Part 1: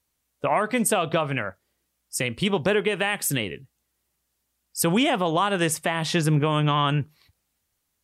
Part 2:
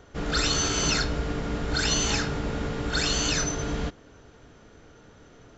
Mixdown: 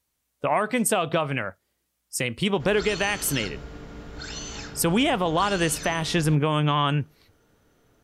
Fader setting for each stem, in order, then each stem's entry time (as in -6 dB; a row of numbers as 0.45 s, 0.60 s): -0.5 dB, -11.0 dB; 0.00 s, 2.45 s